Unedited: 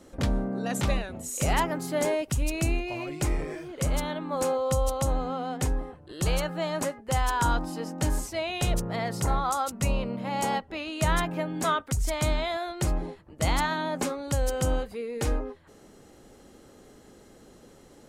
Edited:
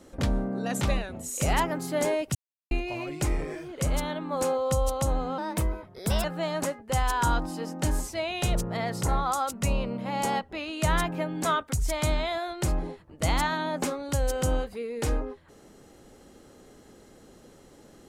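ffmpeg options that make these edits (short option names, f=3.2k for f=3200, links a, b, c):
-filter_complex "[0:a]asplit=5[a][b][c][d][e];[a]atrim=end=2.35,asetpts=PTS-STARTPTS,afade=t=out:st=2.346:d=0.004:c=hsin[f];[b]atrim=start=2.35:end=2.71,asetpts=PTS-STARTPTS,volume=0[g];[c]atrim=start=2.71:end=5.384,asetpts=PTS-STARTPTS,afade=t=in:d=0.004:c=hsin[h];[d]atrim=start=5.38:end=6.43,asetpts=PTS-STARTPTS,asetrate=53802,aresample=44100[i];[e]atrim=start=6.426[j];[f][g][h]concat=n=3:v=0:a=1[k];[k][i]acrossfade=d=0.004:c1=hsin:c2=hsin[l];[l][j]acrossfade=d=0.004:c1=hsin:c2=hsin"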